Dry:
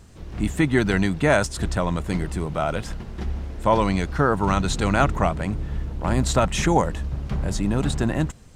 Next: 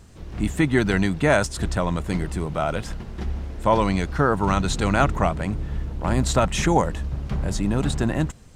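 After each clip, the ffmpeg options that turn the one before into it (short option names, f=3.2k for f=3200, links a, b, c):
-af anull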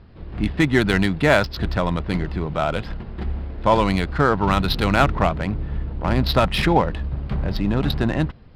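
-af "aemphasis=mode=production:type=75fm,aresample=11025,aresample=44100,adynamicsmooth=sensitivity=2.5:basefreq=2.1k,volume=2.5dB"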